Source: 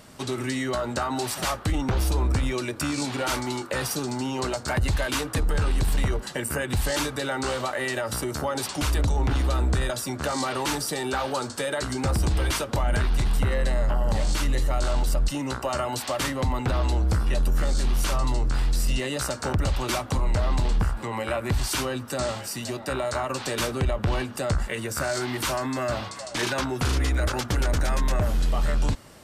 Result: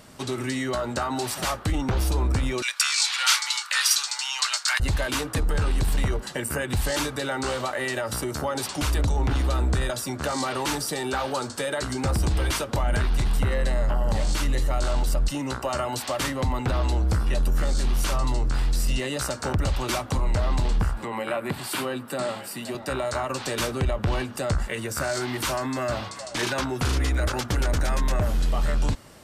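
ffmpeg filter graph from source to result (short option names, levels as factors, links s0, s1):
-filter_complex "[0:a]asettb=1/sr,asplit=3[s0][s1][s2];[s0]atrim=end=2.624[s3];[s1]atrim=start=2.62:end=4.8,asetpts=PTS-STARTPTS,afade=t=in:d=0.004:c=qsin,afade=t=out:st=2.176:d=0.004:c=qsin,highpass=f=1100:w=0.5412,highpass=f=1100:w=1.3066,equalizer=f=4500:w=0.38:g=12.5[s4];[s2]atrim=start=4.796[s5];[s3][s4]acrossfade=d=0.004:c1=hsin:c2=qsin[s6];[s6][s5]acrossfade=d=0.004:c1=qsin:c2=hsin,asettb=1/sr,asplit=3[s7][s8][s9];[s7]atrim=end=21.044[s10];[s8]atrim=start=21.04:end=22.75,asetpts=PTS-STARTPTS,afade=t=in:d=0.004:c=qsin,afade=t=out:st=1.706:d=0.004:c=qsin,highpass=f=140:w=0.5412,highpass=f=140:w=1.3066,equalizer=f=6000:t=o:w=0.56:g=-11.5[s11];[s9]atrim=start=22.746[s12];[s10][s11]acrossfade=d=0.004:c1=hsin:c2=qsin[s13];[s13][s12]acrossfade=d=0.004:c1=qsin:c2=hsin"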